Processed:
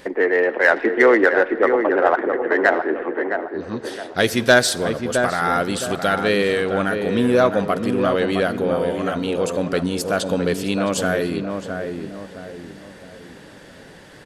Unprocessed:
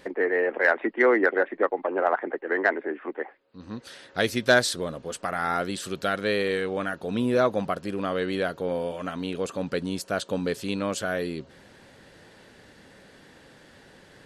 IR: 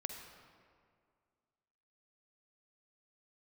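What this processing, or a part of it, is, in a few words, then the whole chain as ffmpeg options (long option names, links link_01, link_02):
saturated reverb return: -filter_complex "[0:a]asplit=2[link_01][link_02];[1:a]atrim=start_sample=2205[link_03];[link_02][link_03]afir=irnorm=-1:irlink=0,asoftclip=type=tanh:threshold=-23dB,volume=-7dB[link_04];[link_01][link_04]amix=inputs=2:normalize=0,highshelf=frequency=9000:gain=3.5,bandreject=frequency=4100:width=28,asplit=2[link_05][link_06];[link_06]adelay=664,lowpass=frequency=1300:poles=1,volume=-5dB,asplit=2[link_07][link_08];[link_08]adelay=664,lowpass=frequency=1300:poles=1,volume=0.41,asplit=2[link_09][link_10];[link_10]adelay=664,lowpass=frequency=1300:poles=1,volume=0.41,asplit=2[link_11][link_12];[link_12]adelay=664,lowpass=frequency=1300:poles=1,volume=0.41,asplit=2[link_13][link_14];[link_14]adelay=664,lowpass=frequency=1300:poles=1,volume=0.41[link_15];[link_05][link_07][link_09][link_11][link_13][link_15]amix=inputs=6:normalize=0,volume=4.5dB"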